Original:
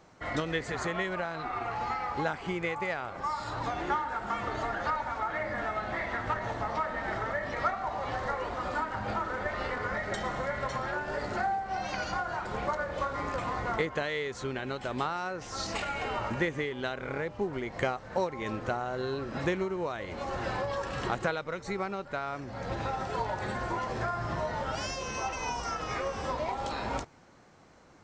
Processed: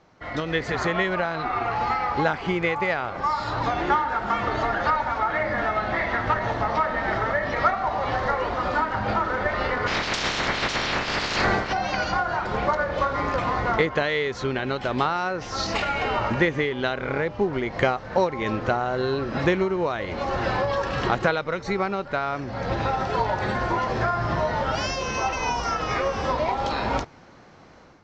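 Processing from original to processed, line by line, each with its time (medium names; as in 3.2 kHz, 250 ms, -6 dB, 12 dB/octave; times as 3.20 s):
9.86–11.72 s: spectral peaks clipped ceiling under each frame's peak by 28 dB
whole clip: low-pass 5.8 kHz 24 dB/octave; level rider gain up to 8.5 dB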